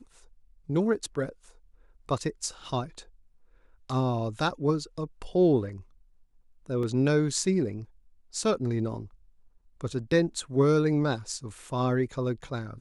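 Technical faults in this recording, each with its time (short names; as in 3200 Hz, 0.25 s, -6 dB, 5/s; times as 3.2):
6.83 gap 3.1 ms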